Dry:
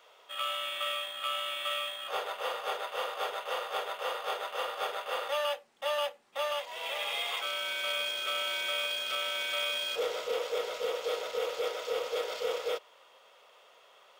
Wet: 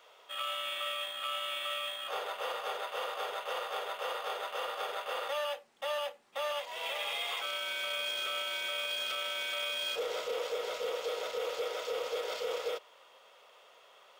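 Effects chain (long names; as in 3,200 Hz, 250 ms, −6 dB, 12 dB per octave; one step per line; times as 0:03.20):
brickwall limiter −26.5 dBFS, peak gain reduction 6 dB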